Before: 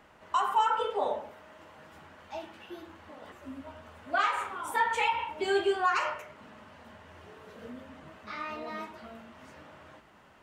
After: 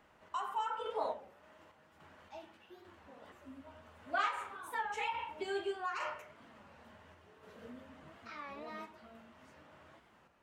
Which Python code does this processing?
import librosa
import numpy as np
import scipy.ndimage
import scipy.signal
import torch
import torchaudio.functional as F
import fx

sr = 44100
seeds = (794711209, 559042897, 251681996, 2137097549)

y = fx.tremolo_random(x, sr, seeds[0], hz=3.5, depth_pct=55)
y = fx.record_warp(y, sr, rpm=33.33, depth_cents=160.0)
y = F.gain(torch.from_numpy(y), -6.0).numpy()